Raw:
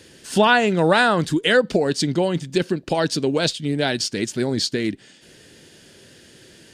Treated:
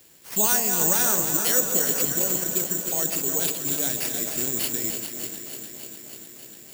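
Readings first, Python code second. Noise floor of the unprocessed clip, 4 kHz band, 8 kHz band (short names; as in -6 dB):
-50 dBFS, -8.0 dB, +11.5 dB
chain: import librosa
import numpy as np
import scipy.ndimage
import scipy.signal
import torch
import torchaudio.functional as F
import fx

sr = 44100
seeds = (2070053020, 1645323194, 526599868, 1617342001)

y = fx.reverse_delay_fb(x, sr, ms=211, feedback_pct=52, wet_db=-7)
y = fx.high_shelf(y, sr, hz=12000.0, db=6.0)
y = fx.echo_alternate(y, sr, ms=149, hz=920.0, feedback_pct=87, wet_db=-8)
y = (np.kron(y[::6], np.eye(6)[0]) * 6)[:len(y)]
y = y * librosa.db_to_amplitude(-14.0)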